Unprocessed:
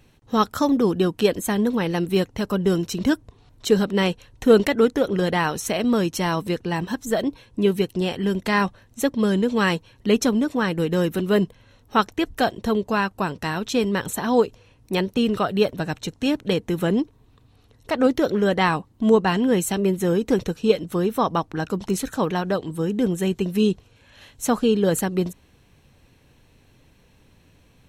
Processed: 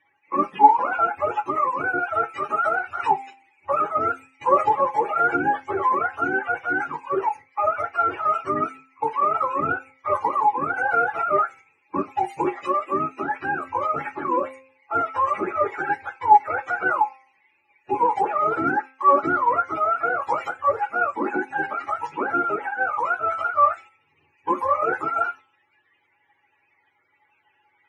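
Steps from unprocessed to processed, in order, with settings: spectrum mirrored in octaves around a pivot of 500 Hz; weighting filter ITU-R 468; gate -43 dBFS, range -9 dB; resonant high shelf 3100 Hz -11.5 dB, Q 3; de-hum 264 Hz, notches 13; small resonant body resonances 360/830 Hz, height 17 dB, ringing for 75 ms; low-pass opened by the level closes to 2700 Hz, open at -21 dBFS; on a send: reverb RT60 0.20 s, pre-delay 4 ms, DRR 7.5 dB; on the sum: gain -1 dB

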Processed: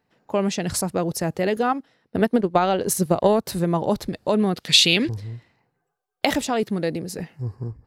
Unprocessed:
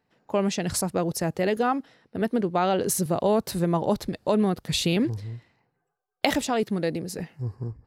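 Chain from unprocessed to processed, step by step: 1.69–3.46 transient shaper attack +7 dB, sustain -7 dB; 4.56–5.09 weighting filter D; gain +2 dB

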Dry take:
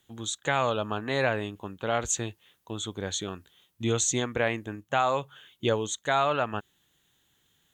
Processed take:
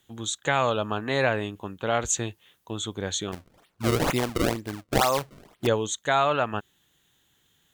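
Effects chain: 3.32–5.67 decimation with a swept rate 30×, swing 160% 2.1 Hz; gain +2.5 dB

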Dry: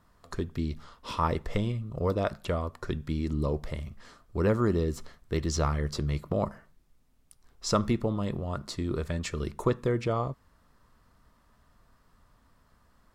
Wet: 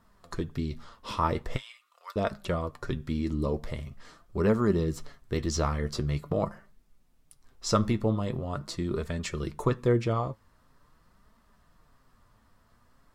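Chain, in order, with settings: 1.56–2.16 HPF 1300 Hz 24 dB/oct; flange 0.44 Hz, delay 4.3 ms, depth 5.5 ms, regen +53%; gain +4.5 dB

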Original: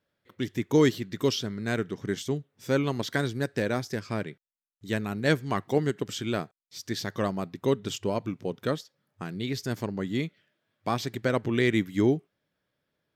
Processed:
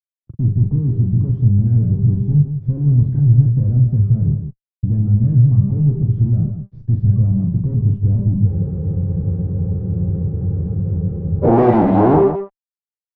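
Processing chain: de-hum 197.3 Hz, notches 11; fuzz box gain 48 dB, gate -52 dBFS; low-pass sweep 120 Hz -> 770 Hz, 10.67–11.56; loudspeakers at several distances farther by 14 m -7 dB, 56 m -8 dB; spectral freeze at 8.5, 2.94 s

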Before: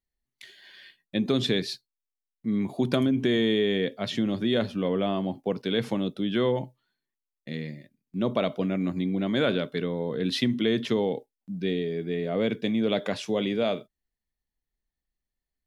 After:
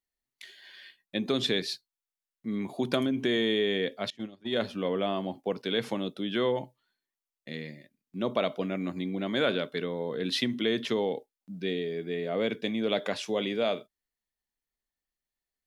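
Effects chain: 4.1–4.6 gate -23 dBFS, range -24 dB; low shelf 220 Hz -11.5 dB

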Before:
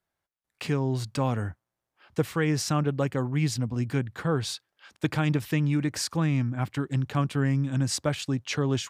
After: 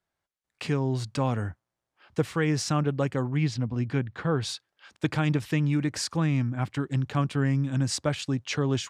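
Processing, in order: LPF 9300 Hz 12 dB/oct, from 3.37 s 4400 Hz, from 4.42 s 9400 Hz

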